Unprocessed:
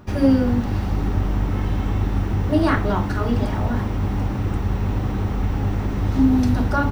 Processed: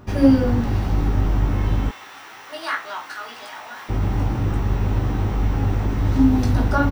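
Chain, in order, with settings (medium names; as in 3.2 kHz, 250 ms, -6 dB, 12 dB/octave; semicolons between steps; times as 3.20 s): 1.89–3.89 s: high-pass 1.3 kHz 12 dB/octave; doubling 18 ms -5 dB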